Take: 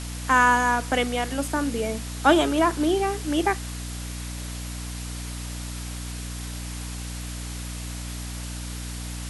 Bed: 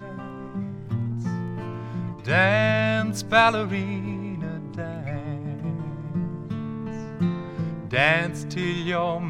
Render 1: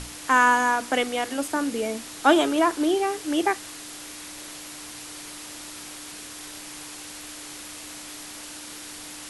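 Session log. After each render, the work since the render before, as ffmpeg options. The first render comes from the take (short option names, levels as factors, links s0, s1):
-af "bandreject=f=60:t=h:w=6,bandreject=f=120:t=h:w=6,bandreject=f=180:t=h:w=6,bandreject=f=240:t=h:w=6"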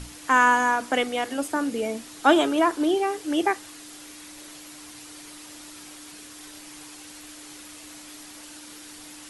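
-af "afftdn=nr=6:nf=-40"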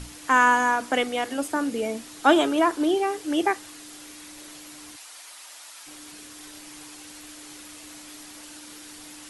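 -filter_complex "[0:a]asplit=3[s0][s1][s2];[s0]afade=t=out:st=4.95:d=0.02[s3];[s1]highpass=f=630:w=0.5412,highpass=f=630:w=1.3066,afade=t=in:st=4.95:d=0.02,afade=t=out:st=5.86:d=0.02[s4];[s2]afade=t=in:st=5.86:d=0.02[s5];[s3][s4][s5]amix=inputs=3:normalize=0"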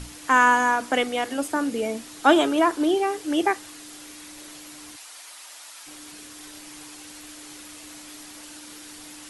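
-af "volume=1.12"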